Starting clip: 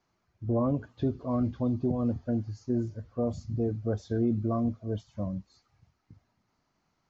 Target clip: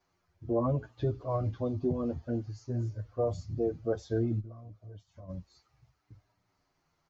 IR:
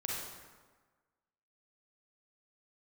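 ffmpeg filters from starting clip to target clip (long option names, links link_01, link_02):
-filter_complex "[0:a]equalizer=frequency=220:width=3.6:gain=-10.5,asplit=3[link_01][link_02][link_03];[link_01]afade=type=out:start_time=4.39:duration=0.02[link_04];[link_02]acompressor=threshold=-47dB:ratio=4,afade=type=in:start_time=4.39:duration=0.02,afade=type=out:start_time=5.28:duration=0.02[link_05];[link_03]afade=type=in:start_time=5.28:duration=0.02[link_06];[link_04][link_05][link_06]amix=inputs=3:normalize=0,asplit=2[link_07][link_08];[link_08]adelay=8,afreqshift=-0.61[link_09];[link_07][link_09]amix=inputs=2:normalize=1,volume=3dB"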